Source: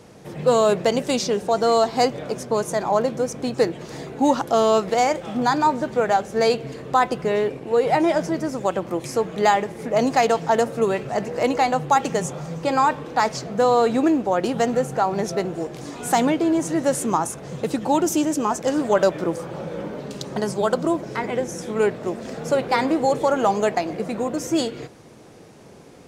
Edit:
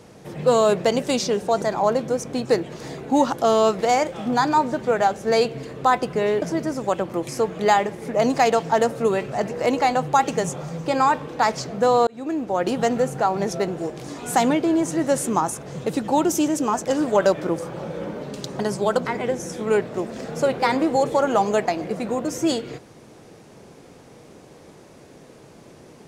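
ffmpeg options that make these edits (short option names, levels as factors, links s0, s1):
-filter_complex "[0:a]asplit=5[s0][s1][s2][s3][s4];[s0]atrim=end=1.622[s5];[s1]atrim=start=2.708:end=7.512[s6];[s2]atrim=start=8.188:end=13.84,asetpts=PTS-STARTPTS,afade=t=out:st=5.648:d=0.004:c=hsin[s7];[s3]atrim=start=13.84:end=20.822,asetpts=PTS-STARTPTS,afade=t=in:d=0.6[s8];[s4]atrim=start=21.138[s9];[s5][s6]acrossfade=d=0.004:c1=hsin:c2=hsin[s10];[s7][s8]concat=n=2:v=0:a=1[s11];[s10][s11]acrossfade=d=0.004:c1=hsin:c2=hsin[s12];[s12][s9]acrossfade=d=0.004:c1=hsin:c2=hsin"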